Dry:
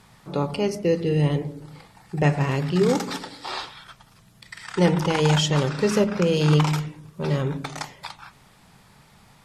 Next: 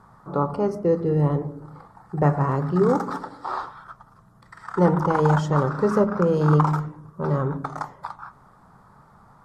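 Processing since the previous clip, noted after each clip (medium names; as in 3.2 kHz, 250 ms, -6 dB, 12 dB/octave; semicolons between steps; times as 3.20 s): resonant high shelf 1.8 kHz -13 dB, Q 3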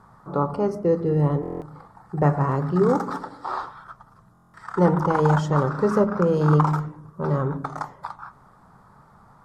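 buffer glitch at 1.41/4.33 s, samples 1024, times 8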